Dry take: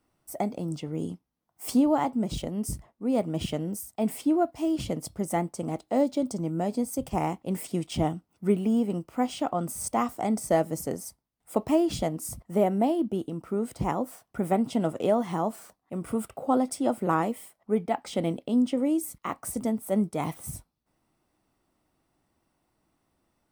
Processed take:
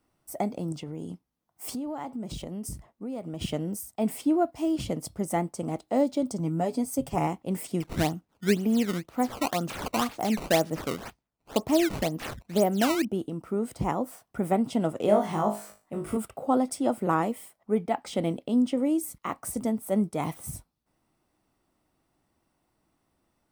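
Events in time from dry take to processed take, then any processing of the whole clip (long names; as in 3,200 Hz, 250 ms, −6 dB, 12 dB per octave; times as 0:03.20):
0:00.72–0:03.42: downward compressor 5 to 1, threshold −32 dBFS
0:06.39–0:07.27: comb filter 7.1 ms, depth 52%
0:07.80–0:13.05: sample-and-hold swept by an LFO 15×, swing 160% 2 Hz
0:15.06–0:16.17: flutter between parallel walls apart 3.3 metres, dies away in 0.32 s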